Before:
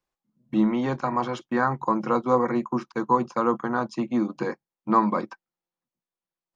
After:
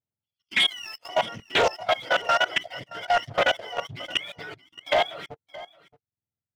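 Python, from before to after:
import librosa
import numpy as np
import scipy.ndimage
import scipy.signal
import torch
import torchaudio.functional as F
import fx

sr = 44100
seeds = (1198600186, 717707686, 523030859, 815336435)

p1 = fx.octave_mirror(x, sr, pivot_hz=840.0)
p2 = fx.differentiator(p1, sr, at=(0.67, 1.09))
p3 = fx.leveller(p2, sr, passes=2)
p4 = fx.level_steps(p3, sr, step_db=19)
p5 = fx.highpass(p4, sr, hz=300.0, slope=6, at=(2.02, 2.57))
p6 = p5 + fx.echo_single(p5, sr, ms=622, db=-18.5, dry=0)
y = fx.doppler_dist(p6, sr, depth_ms=0.33)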